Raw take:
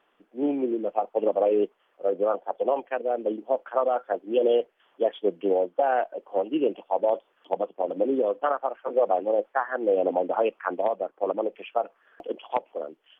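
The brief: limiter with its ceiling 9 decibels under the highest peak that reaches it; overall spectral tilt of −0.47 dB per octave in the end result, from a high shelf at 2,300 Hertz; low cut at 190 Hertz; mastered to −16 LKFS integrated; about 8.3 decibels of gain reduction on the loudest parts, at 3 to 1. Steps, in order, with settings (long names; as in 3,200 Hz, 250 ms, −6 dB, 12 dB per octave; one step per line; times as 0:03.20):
high-pass filter 190 Hz
high-shelf EQ 2,300 Hz −8 dB
downward compressor 3 to 1, threshold −30 dBFS
level +21 dB
brickwall limiter −5 dBFS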